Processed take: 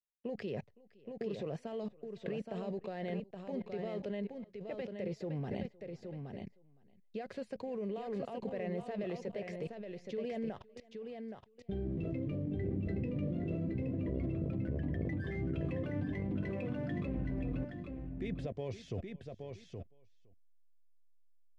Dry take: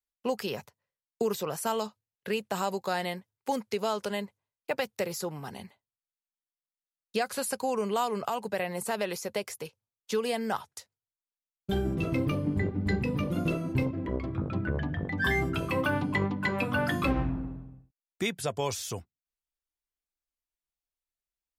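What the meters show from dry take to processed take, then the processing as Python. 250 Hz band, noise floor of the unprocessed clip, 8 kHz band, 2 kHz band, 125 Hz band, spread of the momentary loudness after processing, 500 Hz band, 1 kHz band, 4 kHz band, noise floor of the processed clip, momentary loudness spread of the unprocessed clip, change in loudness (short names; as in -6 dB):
-5.5 dB, under -85 dBFS, under -25 dB, -17.0 dB, -5.0 dB, 10 LU, -7.5 dB, -16.5 dB, -18.0 dB, -64 dBFS, 11 LU, -8.5 dB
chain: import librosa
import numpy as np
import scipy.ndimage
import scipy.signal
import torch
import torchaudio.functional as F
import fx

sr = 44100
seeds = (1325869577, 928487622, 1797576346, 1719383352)

p1 = x + fx.echo_single(x, sr, ms=513, db=-20.0, dry=0)
p2 = fx.level_steps(p1, sr, step_db=22)
p3 = fx.spacing_loss(p2, sr, db_at_10k=40)
p4 = fx.backlash(p3, sr, play_db=-47.0)
p5 = p3 + F.gain(torch.from_numpy(p4), -11.0).numpy()
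p6 = fx.band_shelf(p5, sr, hz=1100.0, db=-12.0, octaves=1.1)
p7 = p6 + 10.0 ** (-6.0 / 20.0) * np.pad(p6, (int(821 * sr / 1000.0), 0))[:len(p6)]
y = F.gain(torch.from_numpy(p7), 6.5).numpy()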